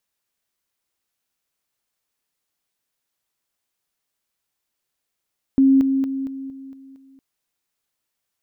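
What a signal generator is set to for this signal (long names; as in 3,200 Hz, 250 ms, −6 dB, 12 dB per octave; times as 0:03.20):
level staircase 269 Hz −10.5 dBFS, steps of −6 dB, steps 7, 0.23 s 0.00 s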